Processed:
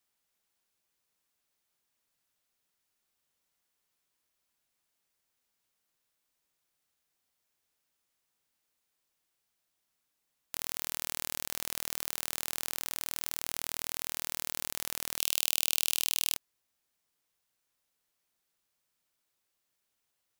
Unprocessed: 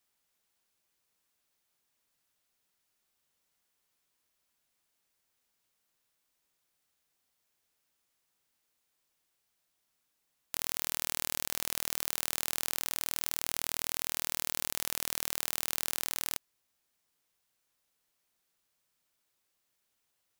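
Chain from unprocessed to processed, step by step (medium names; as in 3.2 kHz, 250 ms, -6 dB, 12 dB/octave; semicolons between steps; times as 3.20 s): 15.18–16.34 s: resonant high shelf 2.3 kHz +6.5 dB, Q 3; trim -2 dB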